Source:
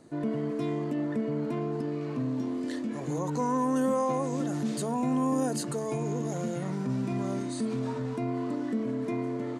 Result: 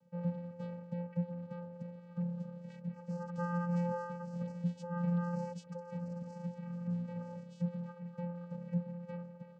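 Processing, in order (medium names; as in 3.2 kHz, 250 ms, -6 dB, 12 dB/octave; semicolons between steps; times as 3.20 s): reverb removal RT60 1.4 s; vocoder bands 8, square 174 Hz; bass shelf 280 Hz -8.5 dB; upward expansion 1.5:1, over -50 dBFS; trim +3.5 dB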